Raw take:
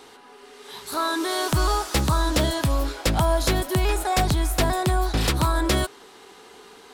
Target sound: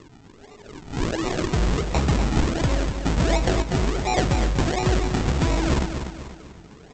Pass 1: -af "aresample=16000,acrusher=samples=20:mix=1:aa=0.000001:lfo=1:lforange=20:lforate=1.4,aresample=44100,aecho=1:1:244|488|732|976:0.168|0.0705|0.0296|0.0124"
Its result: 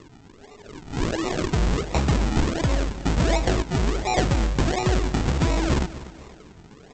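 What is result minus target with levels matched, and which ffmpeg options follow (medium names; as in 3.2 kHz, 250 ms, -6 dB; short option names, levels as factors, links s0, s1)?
echo-to-direct -7.5 dB
-af "aresample=16000,acrusher=samples=20:mix=1:aa=0.000001:lfo=1:lforange=20:lforate=1.4,aresample=44100,aecho=1:1:244|488|732|976|1220:0.398|0.167|0.0702|0.0295|0.0124"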